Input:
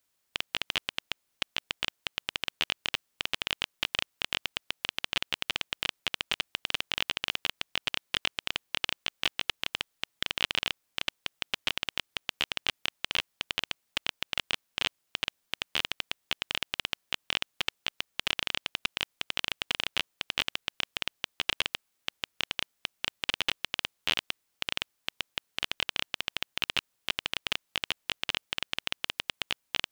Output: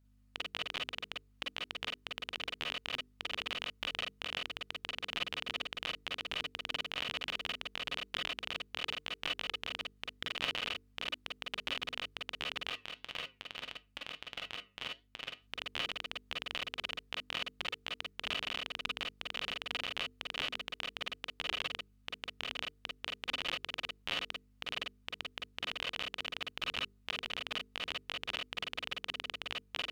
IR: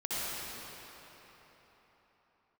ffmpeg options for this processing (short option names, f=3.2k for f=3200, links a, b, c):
-filter_complex "[0:a]highshelf=f=3.4k:g=-8.5,bandreject=f=50:t=h:w=6,bandreject=f=100:t=h:w=6,bandreject=f=150:t=h:w=6,bandreject=f=200:t=h:w=6,bandreject=f=250:t=h:w=6,bandreject=f=300:t=h:w=6,bandreject=f=350:t=h:w=6,bandreject=f=400:t=h:w=6,bandreject=f=450:t=h:w=6,aeval=exprs='val(0)+0.000891*(sin(2*PI*50*n/s)+sin(2*PI*2*50*n/s)/2+sin(2*PI*3*50*n/s)/3+sin(2*PI*4*50*n/s)/4+sin(2*PI*5*50*n/s)/5)':c=same,asplit=3[a][b][c];[a]afade=t=out:st=12.68:d=0.02[d];[b]flanger=delay=7.4:depth=2.8:regen=-81:speed=1.6:shape=triangular,afade=t=in:st=12.68:d=0.02,afade=t=out:st=15.41:d=0.02[e];[c]afade=t=in:st=15.41:d=0.02[f];[d][e][f]amix=inputs=3:normalize=0[g];[1:a]atrim=start_sample=2205,atrim=end_sample=3528,asetrate=61740,aresample=44100[h];[g][h]afir=irnorm=-1:irlink=0,volume=1dB"